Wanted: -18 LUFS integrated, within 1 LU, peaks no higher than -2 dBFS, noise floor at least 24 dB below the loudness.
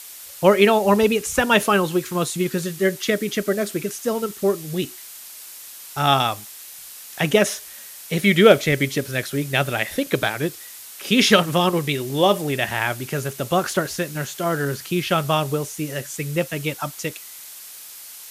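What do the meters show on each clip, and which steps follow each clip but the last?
noise floor -40 dBFS; noise floor target -45 dBFS; loudness -21.0 LUFS; peak level -2.0 dBFS; loudness target -18.0 LUFS
-> noise reduction 6 dB, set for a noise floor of -40 dBFS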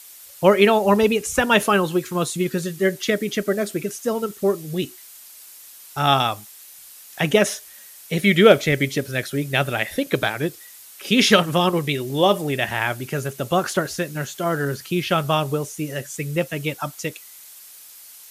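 noise floor -44 dBFS; noise floor target -45 dBFS
-> noise reduction 6 dB, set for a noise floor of -44 dBFS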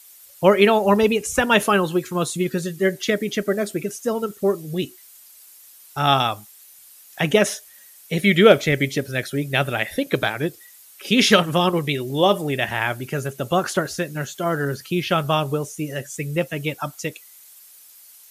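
noise floor -48 dBFS; loudness -21.0 LUFS; peak level -2.0 dBFS; loudness target -18.0 LUFS
-> trim +3 dB; peak limiter -2 dBFS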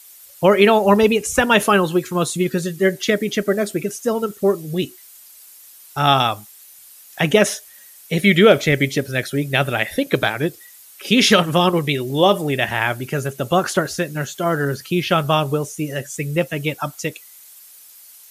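loudness -18.5 LUFS; peak level -2.0 dBFS; noise floor -45 dBFS

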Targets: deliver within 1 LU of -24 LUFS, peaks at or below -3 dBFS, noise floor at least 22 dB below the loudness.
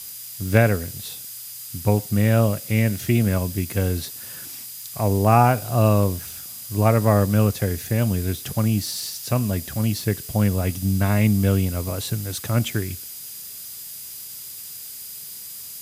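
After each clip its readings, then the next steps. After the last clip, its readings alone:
steady tone 4.9 kHz; tone level -47 dBFS; noise floor -37 dBFS; noise floor target -44 dBFS; loudness -22.0 LUFS; peak level -2.0 dBFS; loudness target -24.0 LUFS
-> band-stop 4.9 kHz, Q 30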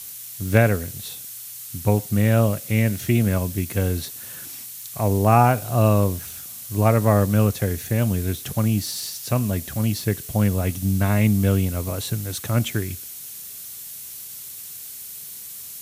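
steady tone not found; noise floor -37 dBFS; noise floor target -44 dBFS
-> noise print and reduce 7 dB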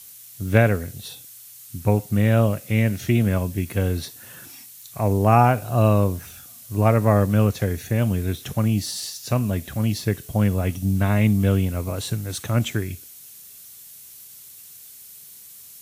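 noise floor -44 dBFS; loudness -21.5 LUFS; peak level -2.0 dBFS; loudness target -24.0 LUFS
-> trim -2.5 dB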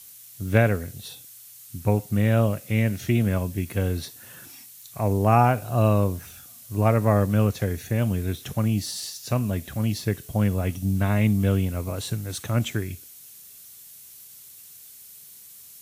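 loudness -24.0 LUFS; peak level -4.5 dBFS; noise floor -47 dBFS

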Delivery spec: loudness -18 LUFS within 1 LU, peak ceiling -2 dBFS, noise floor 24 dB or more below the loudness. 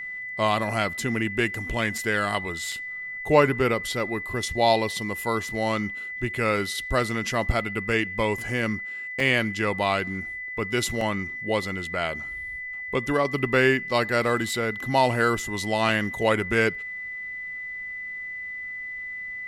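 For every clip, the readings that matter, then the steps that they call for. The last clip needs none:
dropouts 5; longest dropout 2.8 ms; steady tone 2 kHz; tone level -32 dBFS; loudness -25.5 LUFS; peak level -4.5 dBFS; loudness target -18.0 LUFS
-> interpolate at 1.98/2.72/9.20/11.01/15.89 s, 2.8 ms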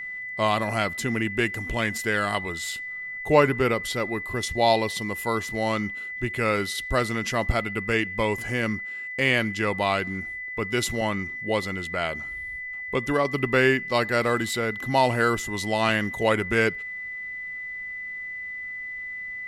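dropouts 0; steady tone 2 kHz; tone level -32 dBFS
-> band-stop 2 kHz, Q 30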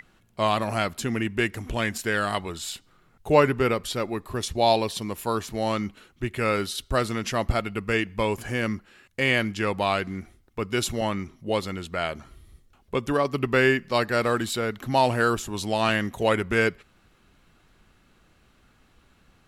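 steady tone not found; loudness -25.5 LUFS; peak level -4.5 dBFS; loudness target -18.0 LUFS
-> trim +7.5 dB; peak limiter -2 dBFS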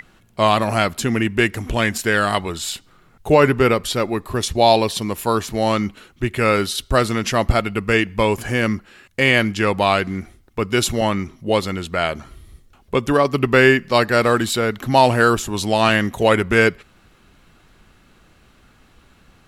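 loudness -18.5 LUFS; peak level -2.0 dBFS; noise floor -54 dBFS

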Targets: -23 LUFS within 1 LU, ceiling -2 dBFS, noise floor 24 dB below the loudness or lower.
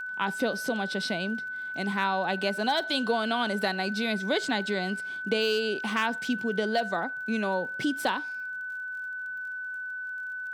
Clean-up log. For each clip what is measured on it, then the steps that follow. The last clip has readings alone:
tick rate 36 per s; steady tone 1.5 kHz; tone level -33 dBFS; loudness -29.0 LUFS; peak level -13.0 dBFS; loudness target -23.0 LUFS
-> de-click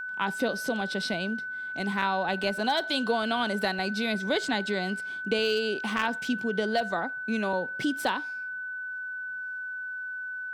tick rate 0.95 per s; steady tone 1.5 kHz; tone level -33 dBFS
-> band-stop 1.5 kHz, Q 30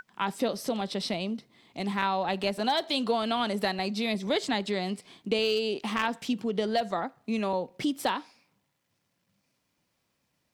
steady tone not found; loudness -30.0 LUFS; peak level -12.5 dBFS; loudness target -23.0 LUFS
-> trim +7 dB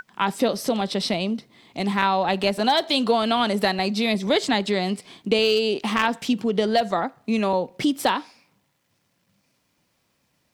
loudness -23.0 LUFS; peak level -5.5 dBFS; noise floor -70 dBFS

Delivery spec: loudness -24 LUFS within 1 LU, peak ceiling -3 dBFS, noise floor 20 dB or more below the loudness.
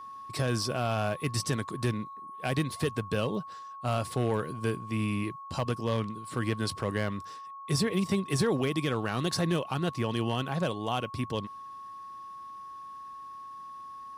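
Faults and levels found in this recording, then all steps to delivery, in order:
clipped samples 0.3%; clipping level -19.0 dBFS; steady tone 1.1 kHz; tone level -41 dBFS; loudness -31.0 LUFS; peak level -19.0 dBFS; loudness target -24.0 LUFS
-> clip repair -19 dBFS; band-stop 1.1 kHz, Q 30; trim +7 dB

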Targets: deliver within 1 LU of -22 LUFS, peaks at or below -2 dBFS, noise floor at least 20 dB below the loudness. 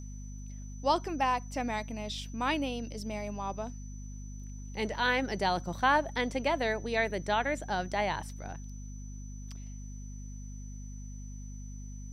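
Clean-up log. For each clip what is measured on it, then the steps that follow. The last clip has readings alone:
hum 50 Hz; highest harmonic 250 Hz; hum level -40 dBFS; steady tone 6 kHz; tone level -54 dBFS; loudness -32.0 LUFS; peak level -13.0 dBFS; loudness target -22.0 LUFS
-> de-hum 50 Hz, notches 5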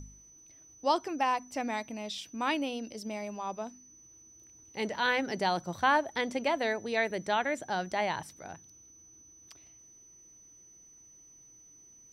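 hum not found; steady tone 6 kHz; tone level -54 dBFS
-> band-stop 6 kHz, Q 30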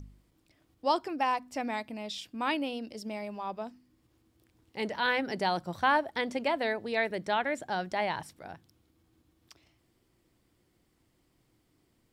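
steady tone not found; loudness -32.0 LUFS; peak level -13.0 dBFS; loudness target -22.0 LUFS
-> trim +10 dB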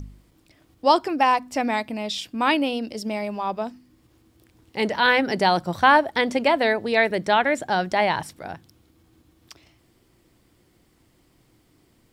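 loudness -22.0 LUFS; peak level -3.0 dBFS; noise floor -62 dBFS

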